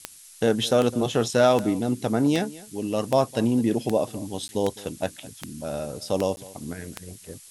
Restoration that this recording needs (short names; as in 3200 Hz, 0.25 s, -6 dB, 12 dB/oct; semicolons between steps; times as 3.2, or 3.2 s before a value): de-click; interpolate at 4.48/6.36, 10 ms; noise print and reduce 22 dB; inverse comb 0.208 s -20 dB